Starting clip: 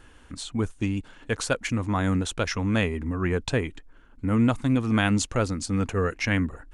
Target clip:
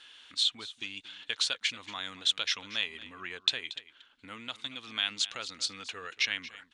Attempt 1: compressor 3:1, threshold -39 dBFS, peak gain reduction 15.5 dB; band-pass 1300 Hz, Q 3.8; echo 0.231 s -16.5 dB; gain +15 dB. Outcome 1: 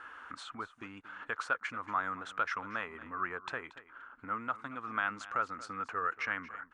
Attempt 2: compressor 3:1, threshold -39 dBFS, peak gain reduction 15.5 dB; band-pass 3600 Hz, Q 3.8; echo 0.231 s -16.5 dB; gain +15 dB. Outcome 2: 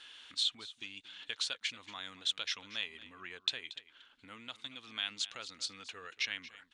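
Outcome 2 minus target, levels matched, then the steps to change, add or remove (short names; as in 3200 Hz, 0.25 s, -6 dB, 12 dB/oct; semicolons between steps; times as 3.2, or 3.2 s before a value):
compressor: peak gain reduction +6.5 dB
change: compressor 3:1, threshold -29.5 dBFS, peak gain reduction 9.5 dB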